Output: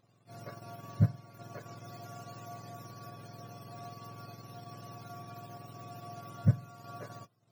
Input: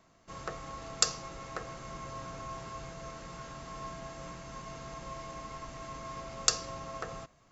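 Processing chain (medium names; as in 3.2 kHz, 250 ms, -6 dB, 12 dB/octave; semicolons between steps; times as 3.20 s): spectrum inverted on a logarithmic axis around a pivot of 870 Hz; transient shaper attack -4 dB, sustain -8 dB; trim -2.5 dB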